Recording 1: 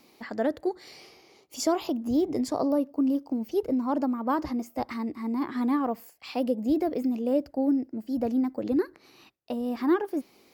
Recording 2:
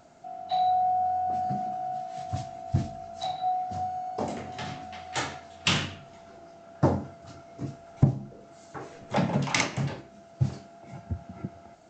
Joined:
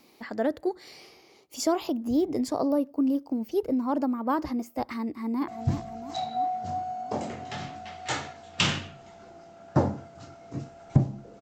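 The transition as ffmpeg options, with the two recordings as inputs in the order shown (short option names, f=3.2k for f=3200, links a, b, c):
-filter_complex "[0:a]apad=whole_dur=11.41,atrim=end=11.41,atrim=end=5.482[a];[1:a]atrim=start=2.548:end=8.48[b];[a][b]acrossfade=d=0.004:c1=hsin:c2=hsin,asplit=2[c][d];[d]afade=t=in:st=5.07:d=0.01,afade=t=out:st=5.48:d=0.01,aecho=0:1:340|680|1020|1360|1700|2040|2380|2720|3060:0.316228|0.205548|0.133606|0.0868441|0.0564486|0.0366916|0.0238495|0.0155022|0.0100764[e];[c][e]amix=inputs=2:normalize=0"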